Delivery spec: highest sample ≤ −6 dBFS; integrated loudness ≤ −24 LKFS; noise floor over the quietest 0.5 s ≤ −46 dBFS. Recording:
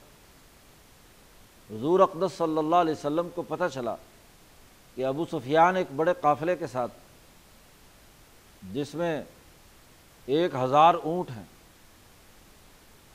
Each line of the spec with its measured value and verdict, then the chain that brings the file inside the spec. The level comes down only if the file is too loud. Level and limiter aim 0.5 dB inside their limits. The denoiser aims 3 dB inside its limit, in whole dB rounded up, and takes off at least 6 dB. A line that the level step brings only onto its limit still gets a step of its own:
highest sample −6.5 dBFS: in spec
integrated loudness −26.5 LKFS: in spec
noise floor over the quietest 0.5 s −55 dBFS: in spec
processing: no processing needed

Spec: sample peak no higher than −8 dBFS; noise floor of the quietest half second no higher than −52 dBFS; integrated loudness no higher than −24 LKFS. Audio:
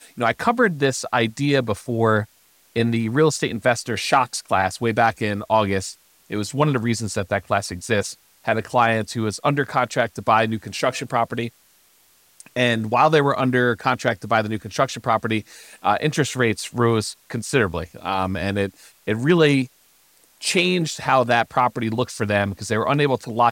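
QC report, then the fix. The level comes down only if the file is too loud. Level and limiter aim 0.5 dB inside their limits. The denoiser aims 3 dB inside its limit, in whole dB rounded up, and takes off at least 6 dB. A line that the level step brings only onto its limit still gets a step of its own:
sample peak −5.5 dBFS: out of spec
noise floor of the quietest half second −57 dBFS: in spec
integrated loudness −21.0 LKFS: out of spec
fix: level −3.5 dB

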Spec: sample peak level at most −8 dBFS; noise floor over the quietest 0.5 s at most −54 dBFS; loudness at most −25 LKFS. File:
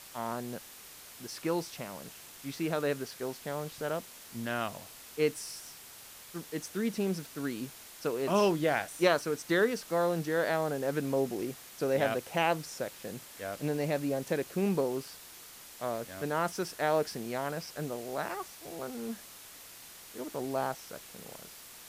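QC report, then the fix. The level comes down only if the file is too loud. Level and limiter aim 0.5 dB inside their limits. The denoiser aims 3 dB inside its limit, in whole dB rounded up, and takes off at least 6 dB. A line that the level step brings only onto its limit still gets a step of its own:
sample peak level −12.5 dBFS: in spec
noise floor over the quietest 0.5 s −50 dBFS: out of spec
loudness −33.0 LKFS: in spec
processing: broadband denoise 7 dB, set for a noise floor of −50 dBFS

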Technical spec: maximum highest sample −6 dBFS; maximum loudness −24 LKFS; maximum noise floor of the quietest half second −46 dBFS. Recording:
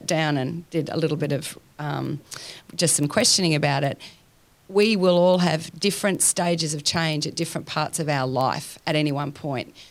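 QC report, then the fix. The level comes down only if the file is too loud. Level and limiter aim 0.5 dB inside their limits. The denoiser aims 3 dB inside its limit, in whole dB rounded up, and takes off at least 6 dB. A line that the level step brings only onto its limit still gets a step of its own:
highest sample −4.5 dBFS: out of spec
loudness −22.5 LKFS: out of spec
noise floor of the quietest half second −57 dBFS: in spec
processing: level −2 dB

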